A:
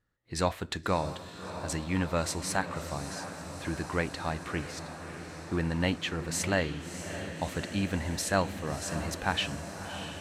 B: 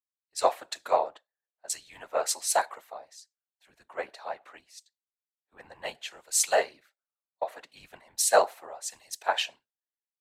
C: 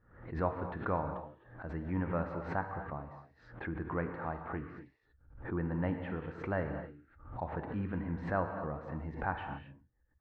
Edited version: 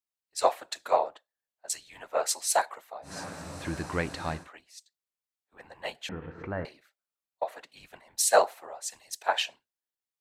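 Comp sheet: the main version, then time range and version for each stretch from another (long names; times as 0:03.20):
B
0:03.10–0:04.41: punch in from A, crossfade 0.16 s
0:06.09–0:06.65: punch in from C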